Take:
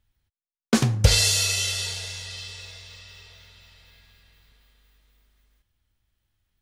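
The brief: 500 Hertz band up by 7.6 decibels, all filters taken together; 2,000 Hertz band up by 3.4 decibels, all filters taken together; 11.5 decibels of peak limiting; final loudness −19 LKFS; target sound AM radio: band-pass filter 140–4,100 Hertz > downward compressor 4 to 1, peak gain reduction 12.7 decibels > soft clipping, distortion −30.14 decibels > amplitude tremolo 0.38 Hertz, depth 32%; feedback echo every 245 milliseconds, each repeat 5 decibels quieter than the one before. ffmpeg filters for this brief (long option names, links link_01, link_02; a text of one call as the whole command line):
ffmpeg -i in.wav -af "equalizer=frequency=500:width_type=o:gain=8.5,equalizer=frequency=2000:width_type=o:gain=5,alimiter=limit=-13dB:level=0:latency=1,highpass=140,lowpass=4100,aecho=1:1:245|490|735|980|1225|1470|1715:0.562|0.315|0.176|0.0988|0.0553|0.031|0.0173,acompressor=threshold=-35dB:ratio=4,asoftclip=threshold=-20dB,tremolo=f=0.38:d=0.32,volume=19.5dB" out.wav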